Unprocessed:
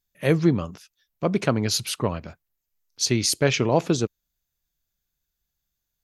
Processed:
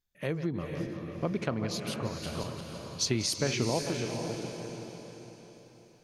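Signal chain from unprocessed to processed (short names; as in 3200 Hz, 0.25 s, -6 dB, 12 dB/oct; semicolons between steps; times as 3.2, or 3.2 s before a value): regenerating reverse delay 0.174 s, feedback 53%, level -11.5 dB; high shelf 7200 Hz -9.5 dB; compressor 2.5:1, threshold -31 dBFS, peak gain reduction 12 dB; random-step tremolo 1.8 Hz; on a send: diffused feedback echo 0.478 s, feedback 44%, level -6 dB; on the sum: gain +2.5 dB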